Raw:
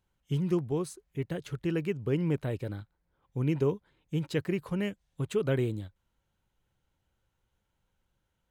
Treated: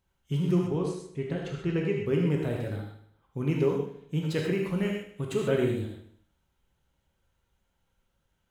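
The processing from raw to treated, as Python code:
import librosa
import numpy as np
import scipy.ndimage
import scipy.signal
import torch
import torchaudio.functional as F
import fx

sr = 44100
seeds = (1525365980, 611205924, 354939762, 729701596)

y = fx.air_absorb(x, sr, metres=70.0, at=(0.58, 2.05))
y = fx.echo_feedback(y, sr, ms=77, feedback_pct=49, wet_db=-11.5)
y = fx.rev_gated(y, sr, seeds[0], gate_ms=160, shape='flat', drr_db=-0.5)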